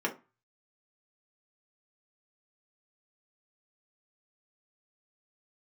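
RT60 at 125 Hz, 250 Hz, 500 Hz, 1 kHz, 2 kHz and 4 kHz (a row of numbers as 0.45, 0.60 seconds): 0.50, 0.30, 0.25, 0.30, 0.25, 0.20 seconds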